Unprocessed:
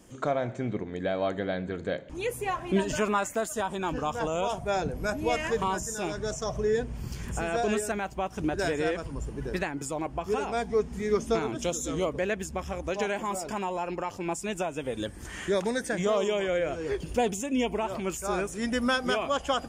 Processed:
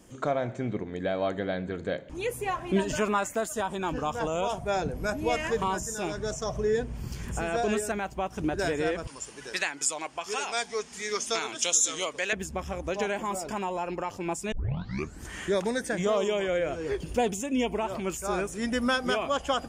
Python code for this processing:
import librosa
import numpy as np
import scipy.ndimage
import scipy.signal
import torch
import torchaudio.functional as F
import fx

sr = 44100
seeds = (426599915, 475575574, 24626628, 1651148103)

y = fx.weighting(x, sr, curve='ITU-R 468', at=(9.07, 12.33))
y = fx.edit(y, sr, fx.tape_start(start_s=14.52, length_s=0.71), tone=tone)